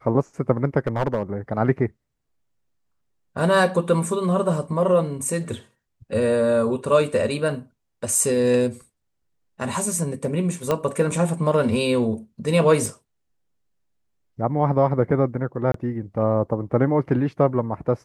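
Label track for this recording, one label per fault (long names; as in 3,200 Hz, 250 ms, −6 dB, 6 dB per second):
0.870000	1.230000	clipping −15.5 dBFS
10.710000	10.710000	click −9 dBFS
12.860000	12.860000	drop-out 2.6 ms
15.720000	15.740000	drop-out 23 ms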